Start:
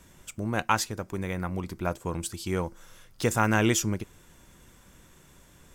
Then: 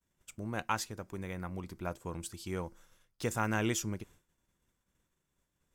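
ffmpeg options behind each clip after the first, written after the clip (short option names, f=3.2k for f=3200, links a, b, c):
-af "agate=range=-33dB:threshold=-43dB:ratio=3:detection=peak,volume=-8.5dB"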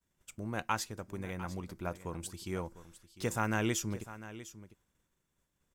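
-af "aecho=1:1:701:0.178"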